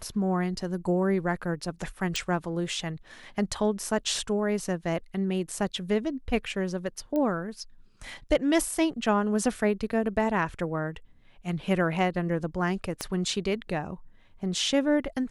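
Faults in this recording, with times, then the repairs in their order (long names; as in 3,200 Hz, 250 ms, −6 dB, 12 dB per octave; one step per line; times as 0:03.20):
0:02.16: click
0:07.16: click −19 dBFS
0:13.01: click −15 dBFS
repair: click removal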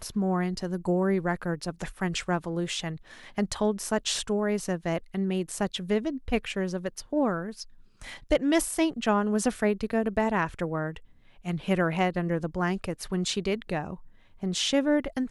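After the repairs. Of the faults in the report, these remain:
0:02.16: click
0:13.01: click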